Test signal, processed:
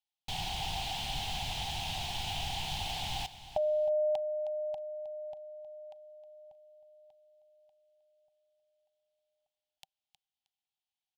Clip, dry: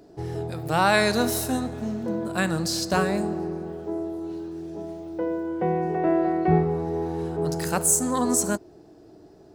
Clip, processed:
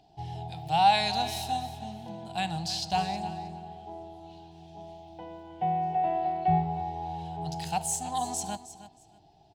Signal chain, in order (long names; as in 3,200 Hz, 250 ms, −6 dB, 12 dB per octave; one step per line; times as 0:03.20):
drawn EQ curve 160 Hz 0 dB, 250 Hz −12 dB, 550 Hz −16 dB, 780 Hz +12 dB, 1,200 Hz −15 dB, 1,900 Hz −6 dB, 3,100 Hz +10 dB, 5,500 Hz −1 dB, 12,000 Hz −10 dB
repeating echo 314 ms, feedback 20%, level −14 dB
level −5.5 dB